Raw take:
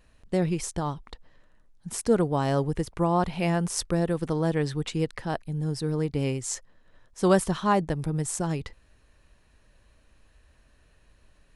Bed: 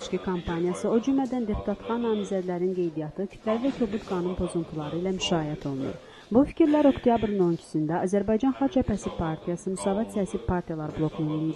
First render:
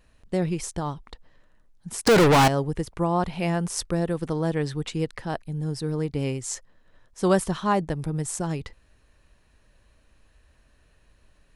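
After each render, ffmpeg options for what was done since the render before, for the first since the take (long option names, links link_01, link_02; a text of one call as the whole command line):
ffmpeg -i in.wav -filter_complex "[0:a]asettb=1/sr,asplit=3[link_01][link_02][link_03];[link_01]atrim=end=2.074[link_04];[link_02]atrim=start=2.07:end=2.48,asetpts=PTS-STARTPTS,afade=type=in:duration=0.004:curve=qsin,afade=type=out:start_time=0.406:duration=0.004:curve=qsin,asplit=2[link_05][link_06];[link_06]highpass=frequency=720:poles=1,volume=42dB,asoftclip=type=tanh:threshold=-10dB[link_07];[link_05][link_07]amix=inputs=2:normalize=0,lowpass=frequency=7500:poles=1,volume=-6dB[link_08];[link_03]atrim=start=2.476[link_09];[link_04][link_08]acrossfade=duration=0.004:curve1=hsin:curve2=qsin[link_10];[link_10][link_09]acrossfade=duration=0.004:curve1=qsin:curve2=hsin" out.wav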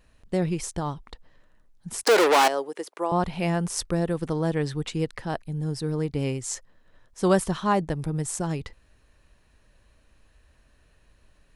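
ffmpeg -i in.wav -filter_complex "[0:a]asettb=1/sr,asplit=3[link_01][link_02][link_03];[link_01]atrim=end=2.034[link_04];[link_02]atrim=start=2.03:end=3.12,asetpts=PTS-STARTPTS,afade=type=in:duration=0.004:curve=qsin,afade=type=out:start_time=1.086:duration=0.004:curve=qsin,highpass=frequency=360:width=0.5412,highpass=frequency=360:width=1.3066[link_05];[link_03]atrim=start=3.116[link_06];[link_04][link_05]acrossfade=duration=0.004:curve1=hsin:curve2=qsin[link_07];[link_07][link_06]acrossfade=duration=0.004:curve1=qsin:curve2=hsin" out.wav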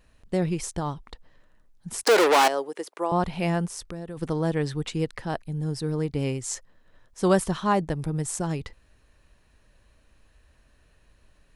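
ffmpeg -i in.wav -filter_complex "[0:a]asplit=3[link_01][link_02][link_03];[link_01]afade=type=out:start_time=3.65:duration=0.02[link_04];[link_02]acompressor=threshold=-37dB:ratio=2.5:attack=3.2:release=140:knee=1:detection=peak,afade=type=in:start_time=3.65:duration=0.02,afade=type=out:start_time=4.16:duration=0.02[link_05];[link_03]afade=type=in:start_time=4.16:duration=0.02[link_06];[link_04][link_05][link_06]amix=inputs=3:normalize=0" out.wav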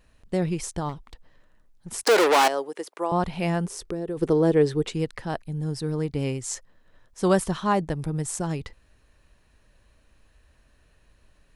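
ffmpeg -i in.wav -filter_complex "[0:a]asettb=1/sr,asplit=3[link_01][link_02][link_03];[link_01]atrim=end=0.894[link_04];[link_02]atrim=start=0.89:end=1.9,asetpts=PTS-STARTPTS,afade=type=in:duration=0.004:curve=qsin,afade=type=out:start_time=1.006:duration=0.004:curve=qsin,aeval=exprs='clip(val(0),-1,0.0106)':channel_layout=same[link_05];[link_03]atrim=start=1.896[link_06];[link_04][link_05]acrossfade=duration=0.004:curve1=hsin:curve2=qsin[link_07];[link_07][link_06]acrossfade=duration=0.004:curve1=qsin:curve2=hsin,asettb=1/sr,asplit=3[link_08][link_09][link_10];[link_08]atrim=end=3.664[link_11];[link_09]atrim=start=3.66:end=4.93,asetpts=PTS-STARTPTS,afade=type=in:duration=0.004:curve=qsin,afade=type=out:start_time=1.266:duration=0.004:curve=qsin,equalizer=frequency=400:width_type=o:width=0.77:gain=13[link_12];[link_10]atrim=start=4.926[link_13];[link_11][link_12]acrossfade=duration=0.004:curve1=hsin:curve2=qsin[link_14];[link_14][link_13]acrossfade=duration=0.004:curve1=qsin:curve2=hsin" out.wav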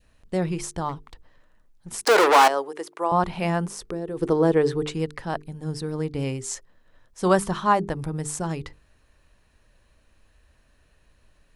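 ffmpeg -i in.wav -af "bandreject=frequency=50:width_type=h:width=6,bandreject=frequency=100:width_type=h:width=6,bandreject=frequency=150:width_type=h:width=6,bandreject=frequency=200:width_type=h:width=6,bandreject=frequency=250:width_type=h:width=6,bandreject=frequency=300:width_type=h:width=6,bandreject=frequency=350:width_type=h:width=6,bandreject=frequency=400:width_type=h:width=6,bandreject=frequency=450:width_type=h:width=6,adynamicequalizer=threshold=0.0178:dfrequency=1100:dqfactor=1.1:tfrequency=1100:tqfactor=1.1:attack=5:release=100:ratio=0.375:range=3:mode=boostabove:tftype=bell" out.wav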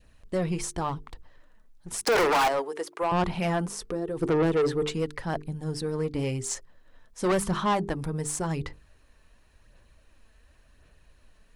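ffmpeg -i in.wav -af "aphaser=in_gain=1:out_gain=1:delay=4.6:decay=0.33:speed=0.92:type=sinusoidal,asoftclip=type=tanh:threshold=-19.5dB" out.wav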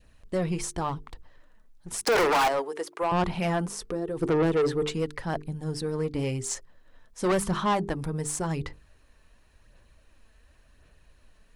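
ffmpeg -i in.wav -af anull out.wav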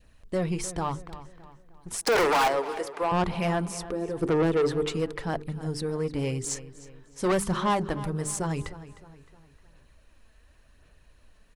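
ffmpeg -i in.wav -filter_complex "[0:a]asplit=2[link_01][link_02];[link_02]adelay=308,lowpass=frequency=4500:poles=1,volume=-15dB,asplit=2[link_03][link_04];[link_04]adelay=308,lowpass=frequency=4500:poles=1,volume=0.44,asplit=2[link_05][link_06];[link_06]adelay=308,lowpass=frequency=4500:poles=1,volume=0.44,asplit=2[link_07][link_08];[link_08]adelay=308,lowpass=frequency=4500:poles=1,volume=0.44[link_09];[link_01][link_03][link_05][link_07][link_09]amix=inputs=5:normalize=0" out.wav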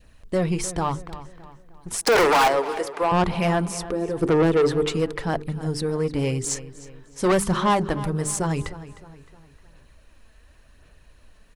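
ffmpeg -i in.wav -af "volume=5dB" out.wav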